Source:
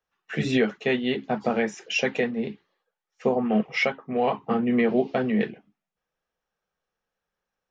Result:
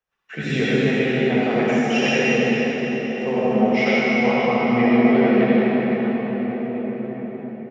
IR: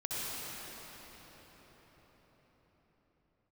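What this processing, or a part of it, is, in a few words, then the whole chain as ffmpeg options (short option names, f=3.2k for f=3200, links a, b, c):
cathedral: -filter_complex "[0:a]asettb=1/sr,asplit=3[a][b][c];[a]atrim=end=0.864[d];[b]atrim=start=0.86:end=1.47,asetpts=PTS-STARTPTS,afade=t=in:d=0.004:c=qsin,afade=t=out:st=0.606:d=0.004:c=qsin,acrossover=split=2600[e][f];[f]acompressor=threshold=-45dB:ratio=4:attack=1:release=60[g];[e][g]amix=inputs=2:normalize=0[h];[c]atrim=start=1.466[i];[d][h]acrossfade=d=0.004:c1=hsin:c2=qsin[j];[j][i]acrossfade=d=0.004:c1=qsin:c2=hsin,equalizer=f=2.3k:t=o:w=0.81:g=3.5[k];[1:a]atrim=start_sample=2205[l];[k][l]afir=irnorm=-1:irlink=0,asplit=2[m][n];[n]adelay=1691,volume=-14dB,highshelf=f=4k:g=-38[o];[m][o]amix=inputs=2:normalize=0"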